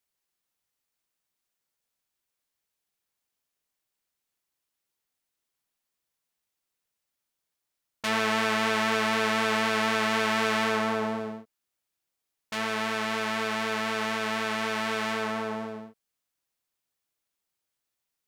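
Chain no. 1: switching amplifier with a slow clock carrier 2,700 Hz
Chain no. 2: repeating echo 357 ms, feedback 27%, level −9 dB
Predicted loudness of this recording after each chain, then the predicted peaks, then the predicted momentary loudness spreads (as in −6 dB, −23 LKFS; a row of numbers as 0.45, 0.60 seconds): −30.5, −27.0 LKFS; −11.5, −10.5 dBFS; 5, 12 LU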